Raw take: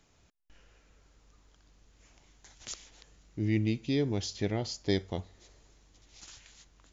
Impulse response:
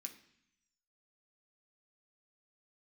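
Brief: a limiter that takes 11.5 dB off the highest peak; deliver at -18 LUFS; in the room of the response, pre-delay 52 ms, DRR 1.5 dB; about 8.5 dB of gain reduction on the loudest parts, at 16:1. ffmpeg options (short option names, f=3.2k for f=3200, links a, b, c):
-filter_complex "[0:a]acompressor=threshold=-32dB:ratio=16,alimiter=level_in=10dB:limit=-24dB:level=0:latency=1,volume=-10dB,asplit=2[a][b];[1:a]atrim=start_sample=2205,adelay=52[c];[b][c]afir=irnorm=-1:irlink=0,volume=4dB[d];[a][d]amix=inputs=2:normalize=0,volume=24.5dB"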